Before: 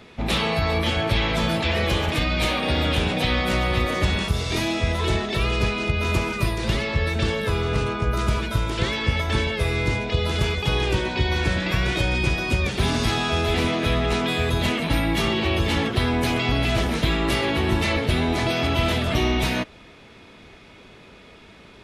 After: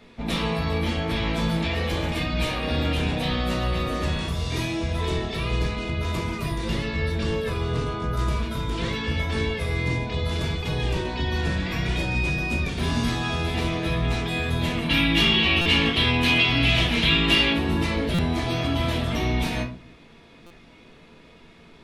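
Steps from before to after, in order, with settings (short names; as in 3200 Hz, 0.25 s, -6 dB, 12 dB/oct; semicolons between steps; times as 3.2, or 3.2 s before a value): 14.89–17.53 bell 2900 Hz +14 dB 1.3 oct; shoebox room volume 260 m³, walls furnished, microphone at 1.7 m; stuck buffer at 15.61/18.14/20.46, samples 256, times 7; gain -7 dB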